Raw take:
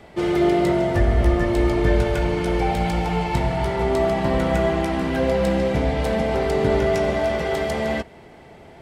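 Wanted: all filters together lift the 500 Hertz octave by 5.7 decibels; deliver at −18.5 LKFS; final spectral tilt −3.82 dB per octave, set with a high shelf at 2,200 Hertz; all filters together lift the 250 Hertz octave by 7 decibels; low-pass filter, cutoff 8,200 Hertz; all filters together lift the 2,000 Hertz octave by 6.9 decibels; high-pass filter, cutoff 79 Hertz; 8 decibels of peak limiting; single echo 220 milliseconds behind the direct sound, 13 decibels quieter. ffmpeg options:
ffmpeg -i in.wav -af "highpass=79,lowpass=8200,equalizer=frequency=250:width_type=o:gain=8.5,equalizer=frequency=500:width_type=o:gain=4.5,equalizer=frequency=2000:width_type=o:gain=9,highshelf=frequency=2200:gain=-3,alimiter=limit=-9dB:level=0:latency=1,aecho=1:1:220:0.224,volume=-1dB" out.wav

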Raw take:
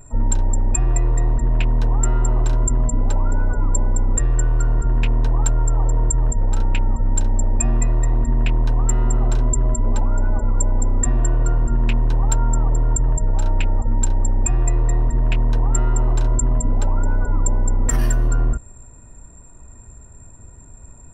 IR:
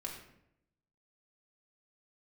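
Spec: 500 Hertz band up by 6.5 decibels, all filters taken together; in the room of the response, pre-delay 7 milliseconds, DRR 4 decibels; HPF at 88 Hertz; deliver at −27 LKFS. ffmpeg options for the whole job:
-filter_complex "[0:a]highpass=88,equalizer=frequency=500:width_type=o:gain=8.5,asplit=2[link_01][link_02];[1:a]atrim=start_sample=2205,adelay=7[link_03];[link_02][link_03]afir=irnorm=-1:irlink=0,volume=-3.5dB[link_04];[link_01][link_04]amix=inputs=2:normalize=0,volume=-2.5dB"

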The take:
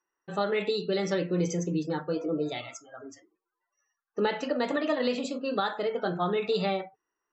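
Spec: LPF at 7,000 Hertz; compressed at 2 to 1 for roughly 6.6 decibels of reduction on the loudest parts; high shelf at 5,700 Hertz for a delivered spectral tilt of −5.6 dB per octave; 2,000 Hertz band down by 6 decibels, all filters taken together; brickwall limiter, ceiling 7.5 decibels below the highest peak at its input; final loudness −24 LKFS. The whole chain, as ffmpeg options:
ffmpeg -i in.wav -af "lowpass=7000,equalizer=frequency=2000:width_type=o:gain=-6.5,highshelf=frequency=5700:gain=-8.5,acompressor=threshold=-36dB:ratio=2,volume=16dB,alimiter=limit=-15dB:level=0:latency=1" out.wav

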